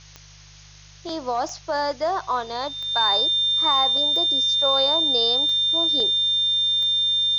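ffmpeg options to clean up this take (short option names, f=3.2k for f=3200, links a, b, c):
-af "adeclick=t=4,bandreject=f=50.2:t=h:w=4,bandreject=f=100.4:t=h:w=4,bandreject=f=150.6:t=h:w=4,bandreject=f=3.6k:w=30,afftdn=nr=22:nf=-47"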